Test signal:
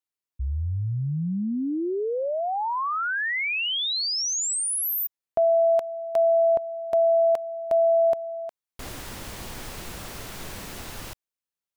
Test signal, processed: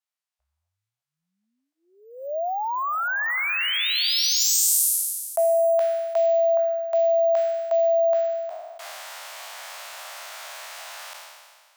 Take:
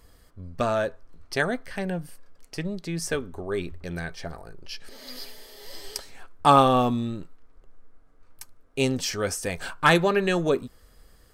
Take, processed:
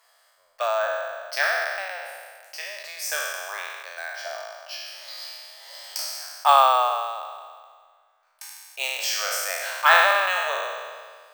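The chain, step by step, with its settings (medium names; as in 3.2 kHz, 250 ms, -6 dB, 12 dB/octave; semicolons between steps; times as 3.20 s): spectral sustain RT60 1.76 s; elliptic high-pass 620 Hz, stop band 50 dB; careless resampling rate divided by 2×, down filtered, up hold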